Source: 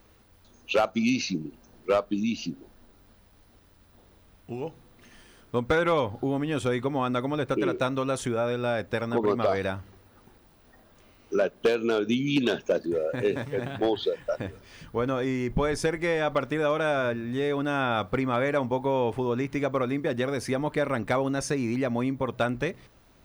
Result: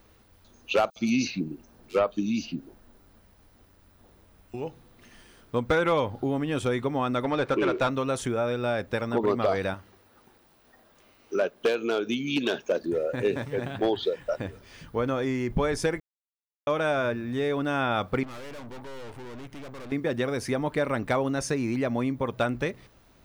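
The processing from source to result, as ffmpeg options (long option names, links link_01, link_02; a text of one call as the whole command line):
ffmpeg -i in.wav -filter_complex "[0:a]asettb=1/sr,asplit=3[link_01][link_02][link_03];[link_01]atrim=end=0.904[link_04];[link_02]atrim=start=0.9:end=4.54,asetpts=PTS-STARTPTS,afade=type=in:duration=0.004:curve=qsin,afade=type=out:start_time=3.636:duration=0.004:curve=qsin,acrossover=split=3700[link_05][link_06];[link_05]adelay=60[link_07];[link_07][link_06]amix=inputs=2:normalize=0,atrim=end_sample=160524[link_08];[link_03]atrim=start=4.536[link_09];[link_04][link_08]acrossfade=duration=0.004:curve1=hsin:curve2=qsin[link_10];[link_10][link_09]acrossfade=duration=0.004:curve1=qsin:curve2=hsin,asettb=1/sr,asplit=3[link_11][link_12][link_13];[link_11]atrim=end=7.234[link_14];[link_12]atrim=start=7.23:end=7.9,asetpts=PTS-STARTPTS,afade=type=in:duration=0.004:curve=qsin,afade=type=out:start_time=0.666:duration=0.004:curve=qsin,asplit=2[link_15][link_16];[link_16]highpass=frequency=720:poles=1,volume=14dB,asoftclip=type=tanh:threshold=-15.5dB[link_17];[link_15][link_17]amix=inputs=2:normalize=0,lowpass=frequency=2700:poles=1,volume=-6dB[link_18];[link_13]atrim=start=7.896[link_19];[link_14][link_18]acrossfade=duration=0.004:curve1=hsin:curve2=qsin[link_20];[link_20][link_19]acrossfade=duration=0.004:curve1=qsin:curve2=hsin,asettb=1/sr,asplit=3[link_21][link_22][link_23];[link_21]atrim=end=9.744[link_24];[link_22]atrim=start=9.74:end=12.82,asetpts=PTS-STARTPTS,afade=type=in:duration=0.004:curve=qsin,afade=type=out:start_time=3.076:duration=0.004:curve=qsin,lowshelf=frequency=180:gain=-11[link_25];[link_23]atrim=start=12.816[link_26];[link_24][link_25]acrossfade=duration=0.004:curve1=hsin:curve2=qsin[link_27];[link_27][link_26]acrossfade=duration=0.004:curve1=qsin:curve2=hsin,asettb=1/sr,asplit=3[link_28][link_29][link_30];[link_28]atrim=end=18.234[link_31];[link_29]atrim=start=18.23:end=19.92,asetpts=PTS-STARTPTS,afade=type=in:duration=0.004:curve=qsin,afade=type=out:start_time=1.686:duration=0.004:curve=qsin,aeval=exprs='(tanh(100*val(0)+0.8)-tanh(0.8))/100':channel_layout=same[link_32];[link_30]atrim=start=19.916[link_33];[link_31][link_32]acrossfade=duration=0.004:curve1=hsin:curve2=qsin[link_34];[link_34][link_33]acrossfade=duration=0.004:curve1=qsin:curve2=hsin,asplit=3[link_35][link_36][link_37];[link_35]atrim=end=16,asetpts=PTS-STARTPTS,afade=type=out:start_time=15.996:duration=0.004:curve=hsin[link_38];[link_36]atrim=start=16:end=16.67,asetpts=PTS-STARTPTS,volume=0[link_39];[link_37]atrim=start=16.67,asetpts=PTS-STARTPTS,afade=type=in:duration=0.004:curve=hsin[link_40];[link_38][link_39][link_40]concat=n=3:v=0:a=1" out.wav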